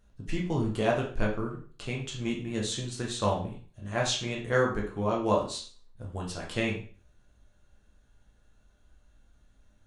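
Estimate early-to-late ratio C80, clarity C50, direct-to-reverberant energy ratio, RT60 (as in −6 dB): 11.0 dB, 6.5 dB, −2.5 dB, 0.40 s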